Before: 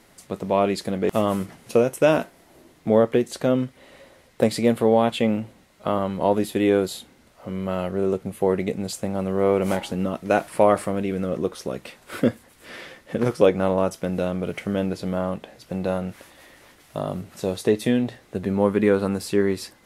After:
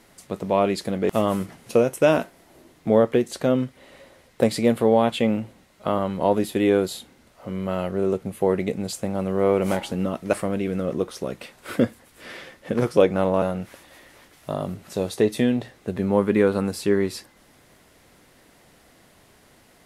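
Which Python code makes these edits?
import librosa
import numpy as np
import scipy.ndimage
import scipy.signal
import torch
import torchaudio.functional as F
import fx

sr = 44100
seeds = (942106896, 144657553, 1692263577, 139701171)

y = fx.edit(x, sr, fx.cut(start_s=10.33, length_s=0.44),
    fx.cut(start_s=13.86, length_s=2.03), tone=tone)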